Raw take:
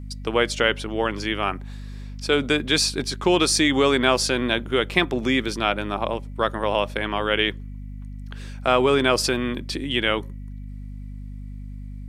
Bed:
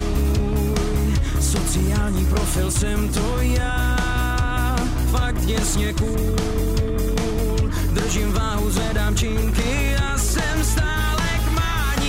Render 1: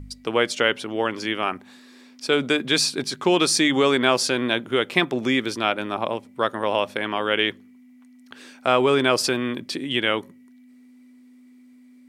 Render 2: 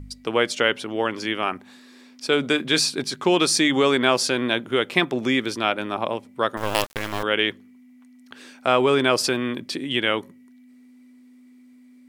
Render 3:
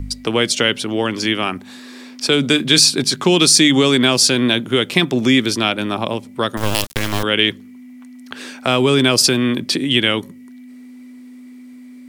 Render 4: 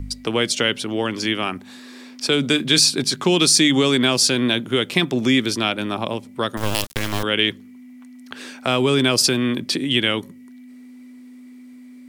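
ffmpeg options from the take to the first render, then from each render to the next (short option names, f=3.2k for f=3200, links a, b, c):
-af "bandreject=f=50:t=h:w=4,bandreject=f=100:t=h:w=4,bandreject=f=150:t=h:w=4,bandreject=f=200:t=h:w=4"
-filter_complex "[0:a]asettb=1/sr,asplit=3[a][b][c];[a]atrim=end=2.414[d];[b]atrim=start=2.41:end=2.81,asetpts=PTS-STARTPTS,afade=t=in:d=0.004:c=qsin,afade=t=out:st=0.396:d=0.004:c=qsin,asplit=2[e][f];[f]adelay=26,volume=-13.5dB[g];[e][g]amix=inputs=2:normalize=0,atrim=end_sample=17640[h];[c]atrim=start=2.806[i];[d][h]acrossfade=d=0.004:c1=hsin:c2=qsin[j];[j][i]acrossfade=d=0.004:c1=qsin:c2=hsin,asettb=1/sr,asplit=3[k][l][m];[k]atrim=end=6.574[n];[l]atrim=start=6.57:end=7.23,asetpts=PTS-STARTPTS,afade=t=in:d=0.004:c=qsin,afade=t=out:st=0.656:d=0.004:c=qsin,acrusher=bits=3:dc=4:mix=0:aa=0.000001[o];[m]atrim=start=7.226[p];[n][o]acrossfade=d=0.004:c1=hsin:c2=qsin[q];[q][p]acrossfade=d=0.004:c1=qsin:c2=hsin"
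-filter_complex "[0:a]acrossover=split=270|3000[a][b][c];[b]acompressor=threshold=-40dB:ratio=2[d];[a][d][c]amix=inputs=3:normalize=0,alimiter=level_in=12dB:limit=-1dB:release=50:level=0:latency=1"
-af "volume=-3.5dB"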